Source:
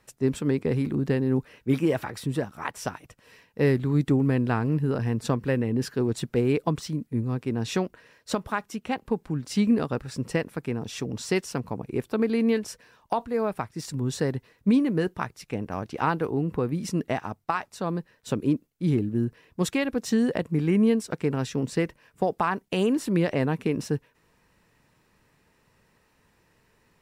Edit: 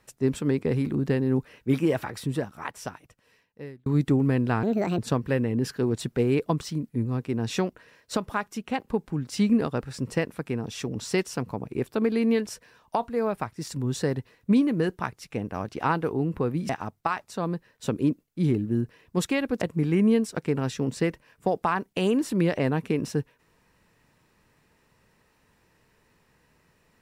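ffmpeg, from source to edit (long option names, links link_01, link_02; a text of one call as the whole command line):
ffmpeg -i in.wav -filter_complex "[0:a]asplit=6[link_01][link_02][link_03][link_04][link_05][link_06];[link_01]atrim=end=3.86,asetpts=PTS-STARTPTS,afade=type=out:start_time=2.25:duration=1.61[link_07];[link_02]atrim=start=3.86:end=4.634,asetpts=PTS-STARTPTS,afade=type=in:duration=0.004:curve=hsin[link_08];[link_03]atrim=start=4.63:end=5.16,asetpts=PTS-STARTPTS,asetrate=66150,aresample=44100[link_09];[link_04]atrim=start=5.156:end=16.872[link_10];[link_05]atrim=start=17.128:end=20.052[link_11];[link_06]atrim=start=20.368[link_12];[link_07][link_08]concat=n=2:v=0:a=1[link_13];[link_13][link_09]acrossfade=duration=0.004:curve1=hsin:curve2=hsin[link_14];[link_14][link_10]acrossfade=duration=0.004:curve1=hsin:curve2=hsin[link_15];[link_15][link_11]acrossfade=duration=0.004:curve1=hsin:curve2=hsin[link_16];[link_16][link_12]acrossfade=duration=0.004:curve1=hsin:curve2=hsin" out.wav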